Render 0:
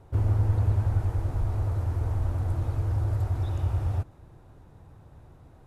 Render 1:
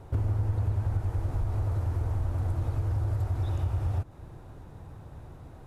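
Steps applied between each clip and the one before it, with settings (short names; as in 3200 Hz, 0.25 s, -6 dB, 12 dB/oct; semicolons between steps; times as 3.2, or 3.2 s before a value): compressor 3:1, threshold -33 dBFS, peak gain reduction 11 dB; gain +5.5 dB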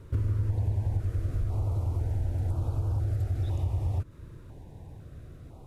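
stepped notch 2 Hz 770–1900 Hz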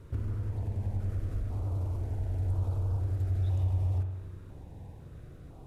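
in parallel at -4 dB: hard clip -34.5 dBFS, distortion -6 dB; on the sum: spring tank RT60 1.2 s, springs 43 ms, chirp 65 ms, DRR 4.5 dB; gain -6.5 dB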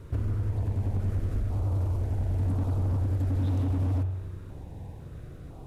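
wavefolder -27 dBFS; gain +5 dB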